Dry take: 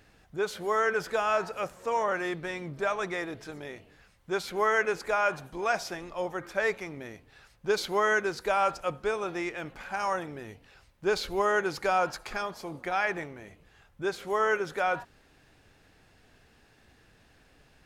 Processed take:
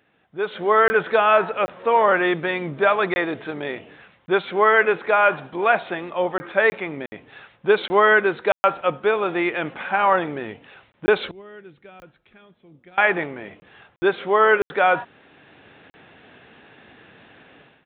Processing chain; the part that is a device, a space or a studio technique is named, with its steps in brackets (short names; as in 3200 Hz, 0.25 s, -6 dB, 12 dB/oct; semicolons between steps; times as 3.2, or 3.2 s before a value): call with lost packets (HPF 170 Hz 12 dB/oct; downsampling 8000 Hz; AGC gain up to 16.5 dB; packet loss bursts); 11.31–12.98 passive tone stack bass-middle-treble 10-0-1; gain -2.5 dB